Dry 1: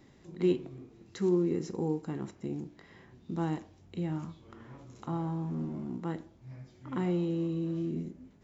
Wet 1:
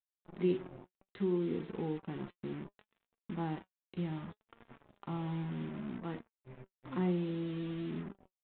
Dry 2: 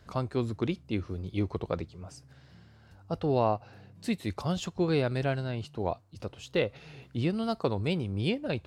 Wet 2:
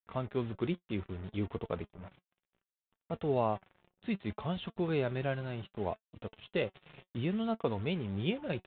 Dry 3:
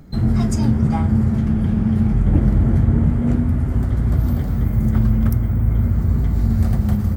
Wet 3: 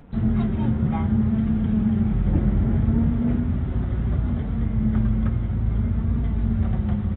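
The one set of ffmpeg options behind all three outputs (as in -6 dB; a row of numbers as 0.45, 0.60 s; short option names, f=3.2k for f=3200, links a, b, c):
-af "acrusher=bits=6:mix=0:aa=0.5,aresample=8000,aresample=44100,flanger=delay=4.2:depth=1.5:regen=65:speed=0.65:shape=triangular"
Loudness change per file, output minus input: -4.5, -4.5, -5.0 LU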